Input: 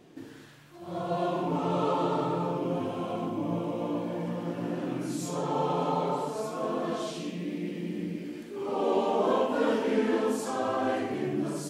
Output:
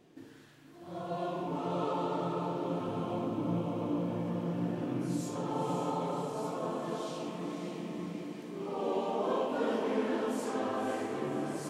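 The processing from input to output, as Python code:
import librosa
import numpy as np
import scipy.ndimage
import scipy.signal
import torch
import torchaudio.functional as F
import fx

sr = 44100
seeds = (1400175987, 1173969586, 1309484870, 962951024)

y = fx.low_shelf(x, sr, hz=210.0, db=10.5, at=(2.88, 5.21))
y = fx.echo_diffused(y, sr, ms=542, feedback_pct=57, wet_db=-6)
y = y * librosa.db_to_amplitude(-6.5)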